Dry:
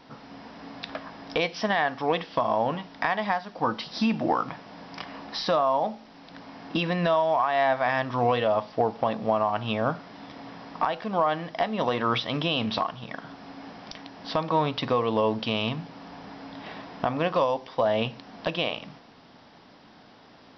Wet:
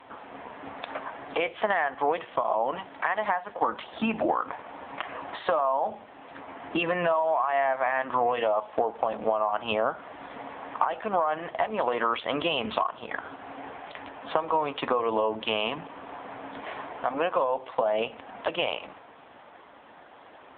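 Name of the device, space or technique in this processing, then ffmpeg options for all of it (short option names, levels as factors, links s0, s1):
voicemail: -af "highpass=410,lowpass=2700,acompressor=threshold=0.0355:ratio=8,volume=2.66" -ar 8000 -c:a libopencore_amrnb -b:a 5900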